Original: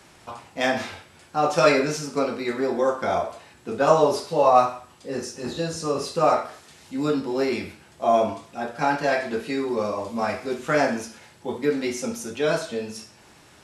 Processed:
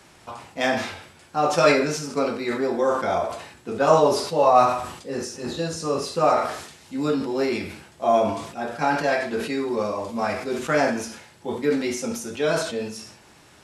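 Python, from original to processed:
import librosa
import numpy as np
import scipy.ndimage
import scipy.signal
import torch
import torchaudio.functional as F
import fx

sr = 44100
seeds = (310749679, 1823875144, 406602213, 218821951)

y = fx.sustainer(x, sr, db_per_s=74.0)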